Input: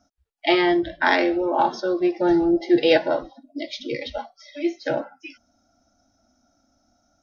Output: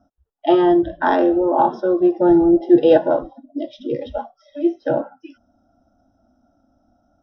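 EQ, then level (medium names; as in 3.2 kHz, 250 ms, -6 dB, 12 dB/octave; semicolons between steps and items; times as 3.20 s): boxcar filter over 20 samples; +6.0 dB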